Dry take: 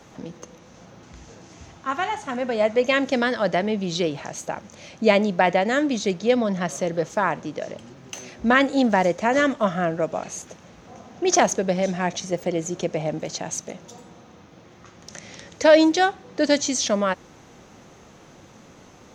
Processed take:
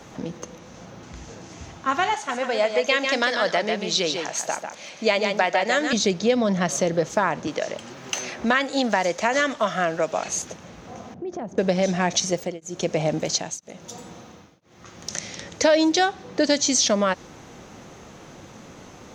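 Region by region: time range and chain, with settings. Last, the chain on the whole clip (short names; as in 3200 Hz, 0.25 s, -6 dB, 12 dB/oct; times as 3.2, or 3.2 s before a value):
2.14–5.93 HPF 710 Hz 6 dB/oct + echo 0.146 s -6.5 dB
7.47–10.29 low shelf 440 Hz -11.5 dB + three-band squash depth 40%
11.14–11.58 band-pass 150 Hz, Q 0.6 + compressor 3:1, threshold -36 dBFS
12.11–15.37 high shelf 3900 Hz +5.5 dB + beating tremolo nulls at 1 Hz
whole clip: dynamic EQ 4900 Hz, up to +5 dB, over -43 dBFS, Q 1.2; compressor 3:1, threshold -22 dBFS; gain +4.5 dB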